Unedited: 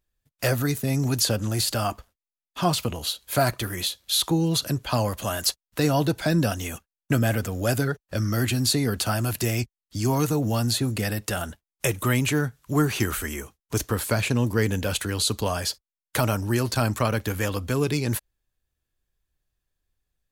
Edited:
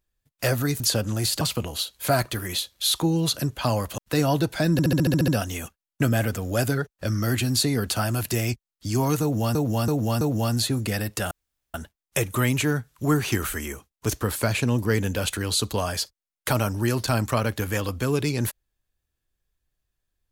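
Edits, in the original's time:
0.80–1.15 s: delete
1.76–2.69 s: delete
5.26–5.64 s: delete
6.38 s: stutter 0.07 s, 9 plays
10.32–10.65 s: loop, 4 plays
11.42 s: insert room tone 0.43 s

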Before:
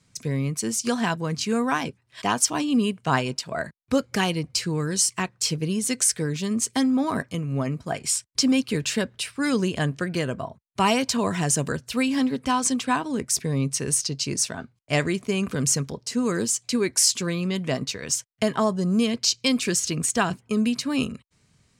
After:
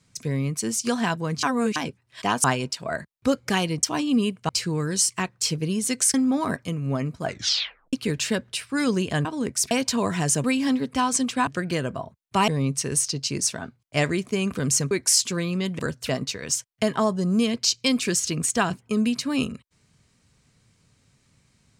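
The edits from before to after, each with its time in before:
1.43–1.76 s: reverse
2.44–3.10 s: move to 4.49 s
6.14–6.80 s: delete
7.90 s: tape stop 0.69 s
9.91–10.92 s: swap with 12.98–13.44 s
11.65–11.95 s: move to 17.69 s
15.87–16.81 s: delete

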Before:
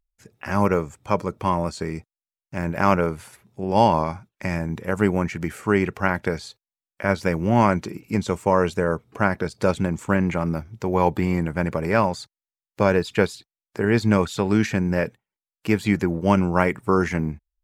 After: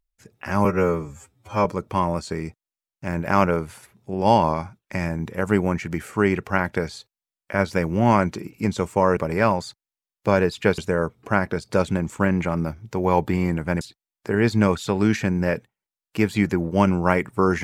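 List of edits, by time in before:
0.65–1.15 s: stretch 2×
11.70–13.31 s: move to 8.67 s

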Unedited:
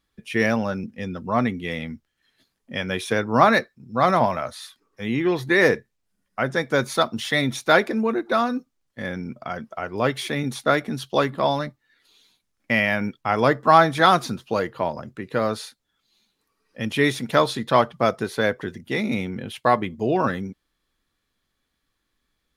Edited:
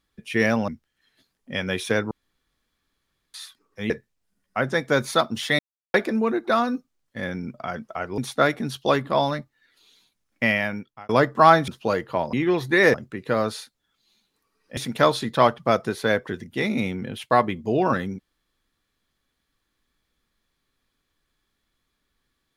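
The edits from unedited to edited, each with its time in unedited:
0.68–1.89 s: delete
3.32–4.55 s: room tone
5.11–5.72 s: move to 14.99 s
7.41–7.76 s: mute
10.00–10.46 s: delete
12.72–13.37 s: fade out
13.96–14.34 s: delete
16.82–17.11 s: delete

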